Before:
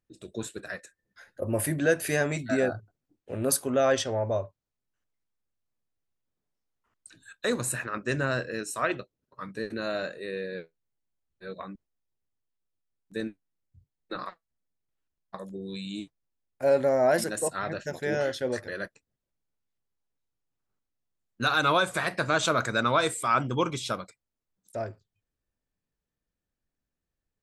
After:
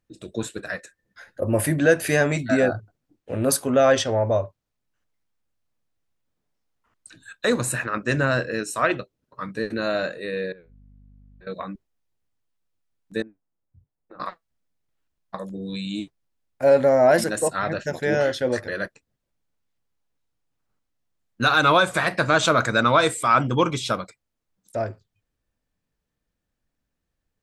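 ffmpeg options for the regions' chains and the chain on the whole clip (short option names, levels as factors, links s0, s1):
-filter_complex "[0:a]asettb=1/sr,asplit=3[s0][s1][s2];[s0]atrim=end=10.524[s3];[s1]atrim=start=10.52:end=11.47,asetpts=PTS-STARTPTS,afade=t=in:d=0.004:c=qsin,afade=t=out:st=0.946:d=0.004:c=qsin,lowpass=2600,aeval=exprs='val(0)+0.00158*(sin(2*PI*50*n/s)+sin(2*PI*2*50*n/s)/2+sin(2*PI*3*50*n/s)/3+sin(2*PI*4*50*n/s)/4+sin(2*PI*5*50*n/s)/5)':c=same,acompressor=threshold=0.002:ratio=5:attack=3.2:release=140:knee=1:detection=peak[s4];[s2]atrim=start=11.466[s5];[s3][s4]acrossfade=d=0.004:c1=hsin:c2=qsin[s6];[s6][s5]acrossfade=d=0.004:c1=qsin:c2=hsin,asettb=1/sr,asplit=3[s7][s8][s9];[s7]atrim=end=13.224[s10];[s8]atrim=start=13.22:end=14.2,asetpts=PTS-STARTPTS,afade=t=in:d=0.004:c=qsin,afade=t=out:st=0.976:d=0.004:c=qsin,lowpass=1100,lowshelf=f=340:g=-5,acompressor=threshold=0.00316:ratio=5:attack=3.2:release=140:knee=1:detection=peak[s11];[s9]atrim=start=14.196[s12];[s10][s11]acrossfade=d=0.004:c1=hsin:c2=qsin[s13];[s13][s12]acrossfade=d=0.004:c1=qsin:c2=hsin,bandreject=f=390:w=13,acontrast=79,highshelf=f=6700:g=-5.5"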